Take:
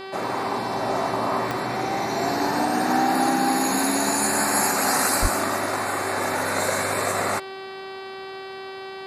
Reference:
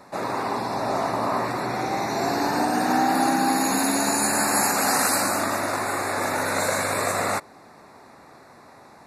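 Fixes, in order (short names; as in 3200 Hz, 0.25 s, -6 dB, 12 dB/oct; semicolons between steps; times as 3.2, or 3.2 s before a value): de-click; de-hum 384.8 Hz, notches 13; 5.21–5.33 HPF 140 Hz 24 dB/oct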